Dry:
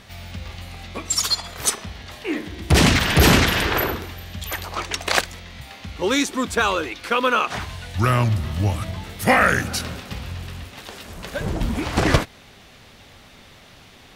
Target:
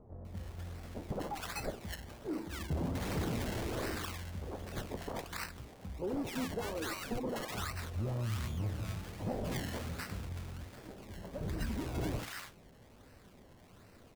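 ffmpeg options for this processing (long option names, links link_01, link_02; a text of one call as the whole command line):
ffmpeg -i in.wav -filter_complex "[0:a]equalizer=frequency=1300:width=0.53:gain=-5,acompressor=threshold=-21dB:ratio=4,flanger=delay=8.5:depth=9.5:regen=69:speed=0.28:shape=sinusoidal,acrusher=samples=25:mix=1:aa=0.000001:lfo=1:lforange=25:lforate=1.3,asoftclip=type=tanh:threshold=-24dB,acrossover=split=1000[link_01][link_02];[link_02]adelay=250[link_03];[link_01][link_03]amix=inputs=2:normalize=0,volume=-4.5dB" out.wav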